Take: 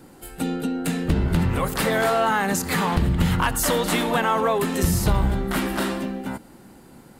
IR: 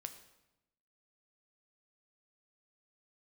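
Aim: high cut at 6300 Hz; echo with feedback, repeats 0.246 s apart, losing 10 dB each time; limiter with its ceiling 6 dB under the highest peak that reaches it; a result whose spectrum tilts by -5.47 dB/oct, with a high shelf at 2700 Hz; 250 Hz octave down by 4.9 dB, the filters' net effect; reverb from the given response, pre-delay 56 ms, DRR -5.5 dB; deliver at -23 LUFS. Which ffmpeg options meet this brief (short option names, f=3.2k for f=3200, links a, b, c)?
-filter_complex "[0:a]lowpass=6.3k,equalizer=f=250:t=o:g=-7,highshelf=f=2.7k:g=-8,alimiter=limit=-15.5dB:level=0:latency=1,aecho=1:1:246|492|738|984:0.316|0.101|0.0324|0.0104,asplit=2[a][b];[1:a]atrim=start_sample=2205,adelay=56[c];[b][c]afir=irnorm=-1:irlink=0,volume=9.5dB[d];[a][d]amix=inputs=2:normalize=0,volume=-4dB"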